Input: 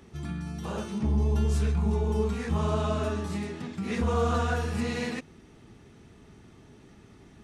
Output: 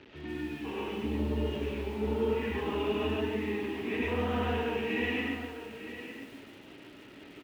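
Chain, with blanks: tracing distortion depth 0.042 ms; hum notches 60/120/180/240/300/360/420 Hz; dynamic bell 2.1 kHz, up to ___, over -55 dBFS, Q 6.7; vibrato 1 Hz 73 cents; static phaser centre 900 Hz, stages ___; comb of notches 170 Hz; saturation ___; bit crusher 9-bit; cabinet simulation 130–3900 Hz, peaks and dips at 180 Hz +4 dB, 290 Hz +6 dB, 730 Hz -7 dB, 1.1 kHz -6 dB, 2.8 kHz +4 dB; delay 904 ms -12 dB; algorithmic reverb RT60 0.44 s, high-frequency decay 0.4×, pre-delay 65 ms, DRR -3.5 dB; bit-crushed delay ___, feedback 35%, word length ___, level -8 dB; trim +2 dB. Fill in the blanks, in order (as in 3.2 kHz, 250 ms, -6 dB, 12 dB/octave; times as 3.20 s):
-4 dB, 8, -25 dBFS, 144 ms, 9-bit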